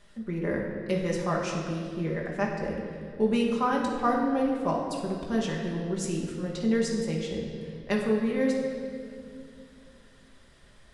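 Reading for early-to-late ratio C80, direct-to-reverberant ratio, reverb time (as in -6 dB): 4.0 dB, -2.5 dB, 2.4 s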